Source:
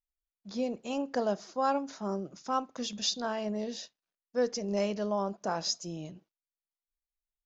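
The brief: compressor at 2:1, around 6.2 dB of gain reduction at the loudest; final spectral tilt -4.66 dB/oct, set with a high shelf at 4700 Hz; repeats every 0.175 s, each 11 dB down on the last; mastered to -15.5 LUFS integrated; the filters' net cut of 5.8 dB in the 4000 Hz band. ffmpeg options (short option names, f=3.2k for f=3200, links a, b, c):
-af "equalizer=f=4k:t=o:g=-4,highshelf=f=4.7k:g=-6,acompressor=threshold=-35dB:ratio=2,aecho=1:1:175|350|525:0.282|0.0789|0.0221,volume=22.5dB"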